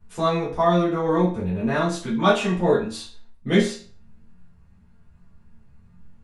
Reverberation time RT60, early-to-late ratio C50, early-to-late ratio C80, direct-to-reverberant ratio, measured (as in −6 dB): 0.45 s, 7.0 dB, 11.5 dB, −10.0 dB